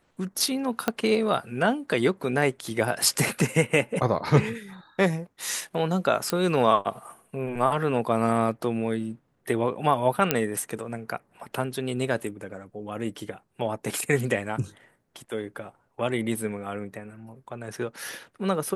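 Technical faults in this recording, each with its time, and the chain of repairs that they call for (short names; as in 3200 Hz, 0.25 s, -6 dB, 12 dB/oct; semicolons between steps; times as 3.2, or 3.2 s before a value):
0.88 pop -9 dBFS
6.3 pop -10 dBFS
10.31 pop -4 dBFS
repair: de-click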